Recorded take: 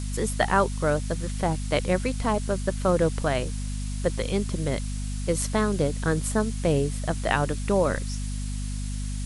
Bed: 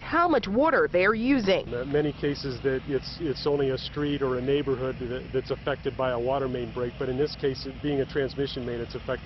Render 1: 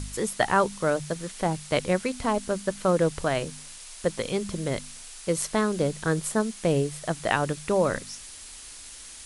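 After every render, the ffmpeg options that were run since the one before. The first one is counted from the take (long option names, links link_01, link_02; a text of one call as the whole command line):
ffmpeg -i in.wav -af "bandreject=frequency=50:width_type=h:width=4,bandreject=frequency=100:width_type=h:width=4,bandreject=frequency=150:width_type=h:width=4,bandreject=frequency=200:width_type=h:width=4,bandreject=frequency=250:width_type=h:width=4" out.wav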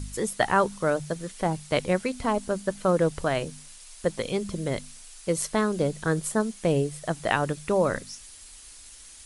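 ffmpeg -i in.wav -af "afftdn=noise_reduction=6:noise_floor=-44" out.wav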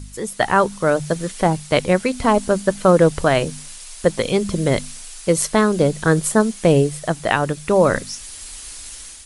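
ffmpeg -i in.wav -af "dynaudnorm=framelen=140:gausssize=5:maxgain=12dB" out.wav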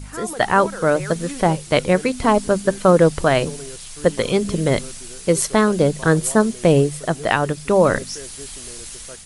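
ffmpeg -i in.wav -i bed.wav -filter_complex "[1:a]volume=-11dB[link_01];[0:a][link_01]amix=inputs=2:normalize=0" out.wav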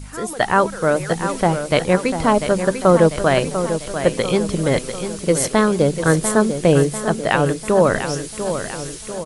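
ffmpeg -i in.wav -af "aecho=1:1:695|1390|2085|2780|3475|4170:0.355|0.188|0.0997|0.0528|0.028|0.0148" out.wav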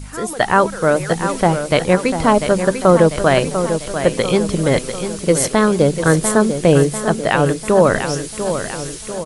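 ffmpeg -i in.wav -af "volume=2.5dB,alimiter=limit=-1dB:level=0:latency=1" out.wav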